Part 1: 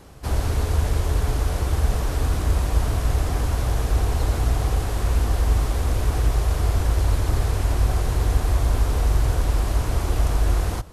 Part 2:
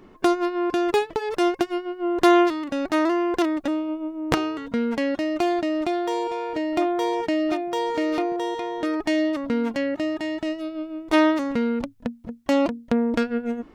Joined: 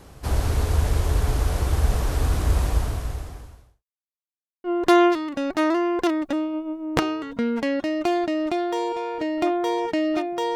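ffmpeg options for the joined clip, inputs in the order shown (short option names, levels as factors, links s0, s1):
-filter_complex "[0:a]apad=whole_dur=10.55,atrim=end=10.55,asplit=2[s0][s1];[s0]atrim=end=3.84,asetpts=PTS-STARTPTS,afade=t=out:st=2.66:d=1.18:c=qua[s2];[s1]atrim=start=3.84:end=4.64,asetpts=PTS-STARTPTS,volume=0[s3];[1:a]atrim=start=1.99:end=7.9,asetpts=PTS-STARTPTS,afade=t=in:d=0.004:c=hsin[s4];[s2][s3][s4]concat=n=3:v=0:a=1"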